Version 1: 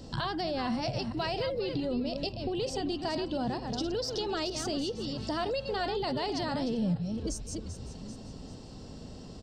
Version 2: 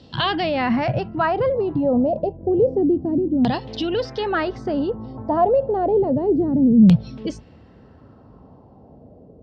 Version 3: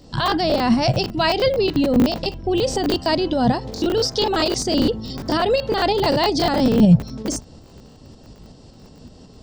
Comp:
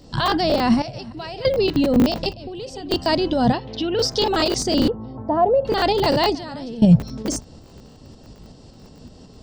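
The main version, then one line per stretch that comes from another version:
3
0.82–1.45 from 1
2.33–2.91 from 1
3.53–3.99 from 2
4.88–5.65 from 2
6.35–6.82 from 1

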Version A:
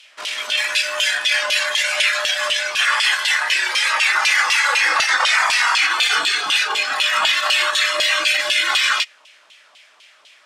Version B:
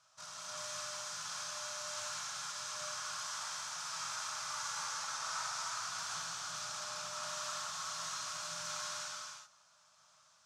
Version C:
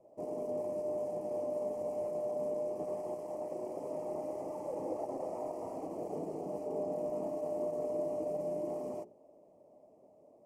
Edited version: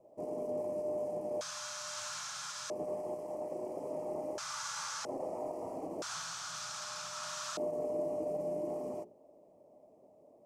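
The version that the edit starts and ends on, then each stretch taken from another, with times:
C
1.41–2.7 from B
4.38–5.05 from B
6.02–7.57 from B
not used: A

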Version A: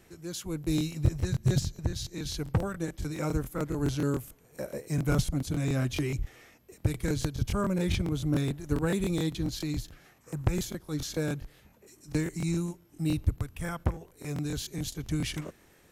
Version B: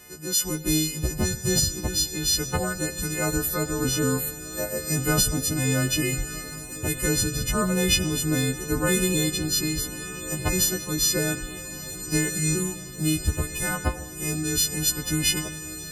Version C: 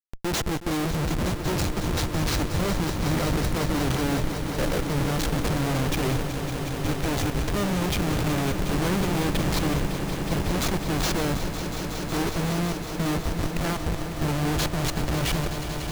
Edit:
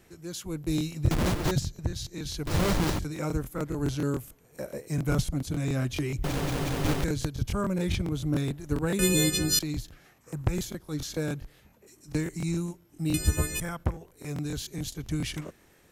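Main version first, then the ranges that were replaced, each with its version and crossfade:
A
1.11–1.51 from C
2.47–2.99 from C
6.24–7.04 from C
8.99–9.59 from B
13.14–13.6 from B

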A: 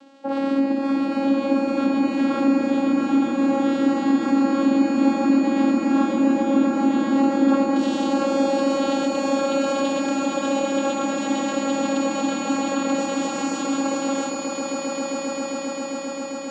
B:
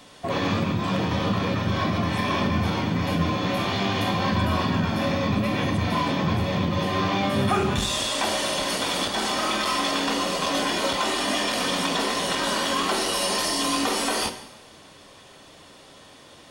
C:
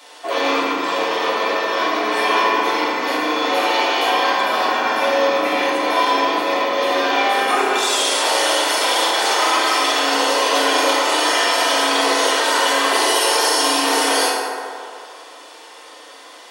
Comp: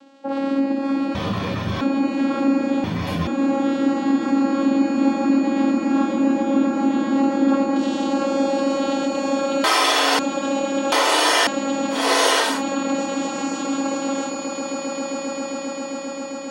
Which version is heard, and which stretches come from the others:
A
1.15–1.81 from B
2.84–3.27 from B
9.64–10.19 from C
10.92–11.47 from C
12.01–12.51 from C, crossfade 0.24 s

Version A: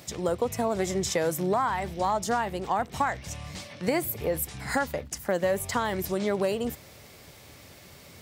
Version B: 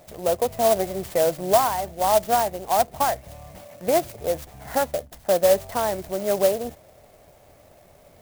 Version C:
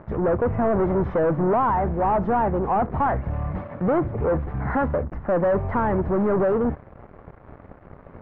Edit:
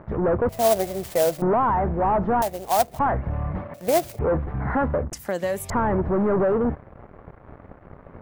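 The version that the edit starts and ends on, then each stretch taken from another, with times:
C
0.49–1.42 from B
2.42–2.99 from B
3.74–4.19 from B
5.13–5.7 from A

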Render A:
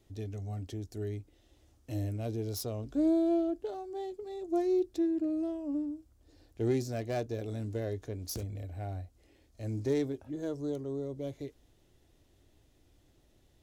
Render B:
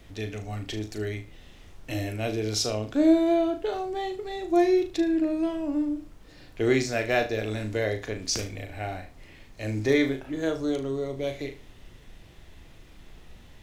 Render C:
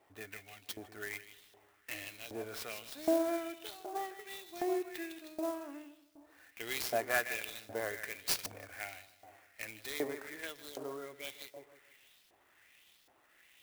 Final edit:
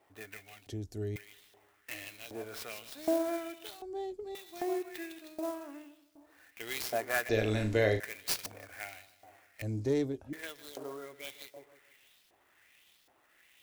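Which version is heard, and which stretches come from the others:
C
0.67–1.16 from A
3.82–4.35 from A
7.29–8 from B
9.62–10.33 from A

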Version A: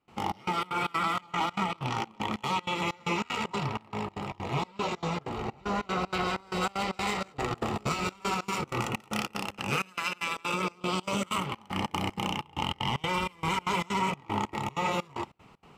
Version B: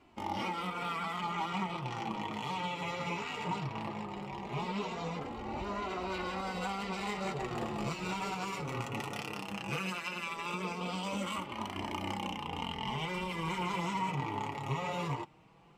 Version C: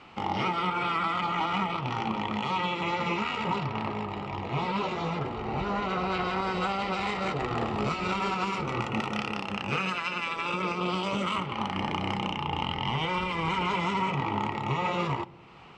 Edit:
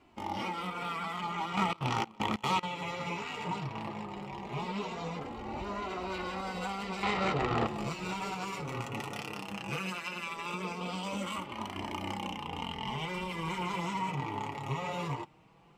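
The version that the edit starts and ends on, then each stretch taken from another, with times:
B
1.57–2.63 from A
7.03–7.67 from C

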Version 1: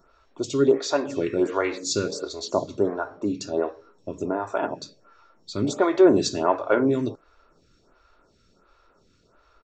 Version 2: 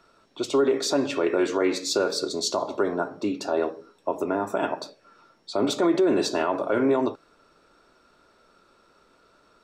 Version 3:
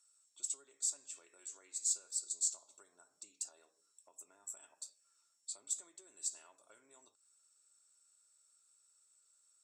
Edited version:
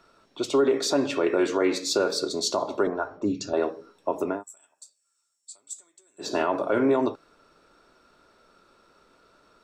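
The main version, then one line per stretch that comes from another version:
2
2.87–3.53 from 1
4.36–6.26 from 3, crossfade 0.16 s

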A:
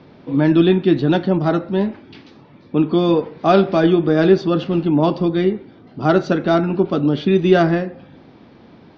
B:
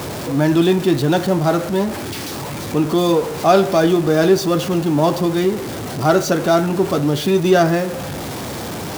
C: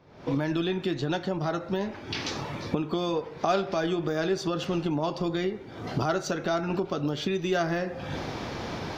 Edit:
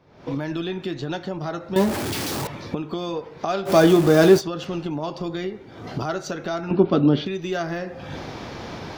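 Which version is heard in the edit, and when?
C
1.76–2.47 from B
3.68–4.39 from B, crossfade 0.06 s
6.71–7.26 from A

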